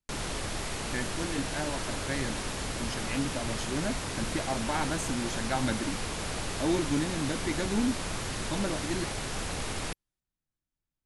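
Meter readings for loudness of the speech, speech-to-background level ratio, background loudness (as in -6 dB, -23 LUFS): -34.0 LUFS, 0.5 dB, -34.5 LUFS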